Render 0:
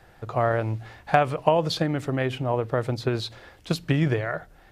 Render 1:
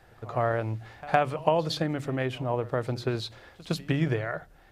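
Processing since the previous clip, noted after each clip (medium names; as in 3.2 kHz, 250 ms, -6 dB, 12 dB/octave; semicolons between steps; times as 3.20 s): de-hum 48.01 Hz, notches 4; pre-echo 111 ms -20 dB; trim -3.5 dB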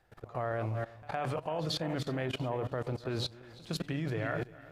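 backward echo that repeats 171 ms, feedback 57%, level -11.5 dB; level held to a coarse grid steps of 18 dB; trim +2.5 dB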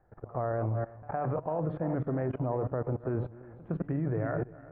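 Bessel low-pass 1 kHz, order 6; trim +4 dB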